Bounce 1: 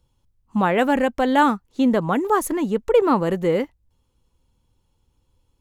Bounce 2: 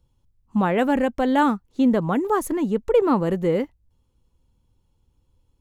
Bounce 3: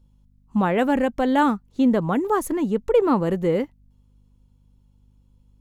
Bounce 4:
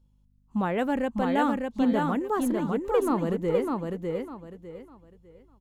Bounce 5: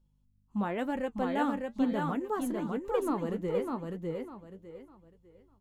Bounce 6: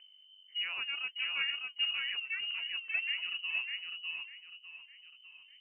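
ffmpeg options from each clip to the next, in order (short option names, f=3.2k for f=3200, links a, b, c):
-af "lowshelf=f=460:g=6,volume=-4.5dB"
-af "aeval=exprs='val(0)+0.00158*(sin(2*PI*50*n/s)+sin(2*PI*2*50*n/s)/2+sin(2*PI*3*50*n/s)/3+sin(2*PI*4*50*n/s)/4+sin(2*PI*5*50*n/s)/5)':c=same"
-af "aecho=1:1:602|1204|1806|2408:0.668|0.18|0.0487|0.0132,volume=-6.5dB"
-af "flanger=delay=5.2:depth=6:regen=58:speed=1:shape=triangular,volume=-1.5dB"
-af "acompressor=mode=upward:threshold=-41dB:ratio=2.5,lowpass=f=2.6k:t=q:w=0.5098,lowpass=f=2.6k:t=q:w=0.6013,lowpass=f=2.6k:t=q:w=0.9,lowpass=f=2.6k:t=q:w=2.563,afreqshift=-3100,volume=-5dB"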